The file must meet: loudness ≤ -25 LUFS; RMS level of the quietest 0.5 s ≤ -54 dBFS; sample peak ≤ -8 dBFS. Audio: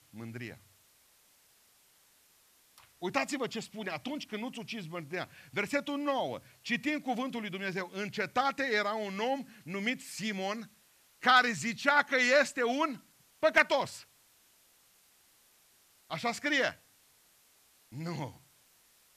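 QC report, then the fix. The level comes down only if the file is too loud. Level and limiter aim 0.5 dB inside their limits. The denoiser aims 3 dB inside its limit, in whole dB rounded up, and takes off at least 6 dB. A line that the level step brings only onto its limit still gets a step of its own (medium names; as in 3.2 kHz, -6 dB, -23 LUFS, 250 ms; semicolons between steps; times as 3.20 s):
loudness -32.0 LUFS: pass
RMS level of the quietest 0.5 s -66 dBFS: pass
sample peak -11.5 dBFS: pass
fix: none needed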